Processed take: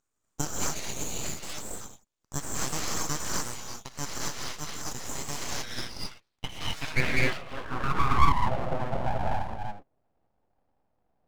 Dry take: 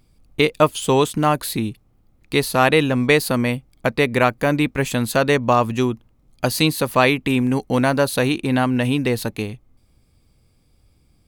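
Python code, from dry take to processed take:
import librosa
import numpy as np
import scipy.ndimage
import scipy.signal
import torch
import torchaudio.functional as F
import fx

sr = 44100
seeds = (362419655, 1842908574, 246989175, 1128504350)

y = fx.filter_sweep_bandpass(x, sr, from_hz=3500.0, to_hz=390.0, start_s=5.28, end_s=8.49, q=6.0)
y = fx.rev_gated(y, sr, seeds[0], gate_ms=290, shape='rising', drr_db=-5.0)
y = np.abs(y)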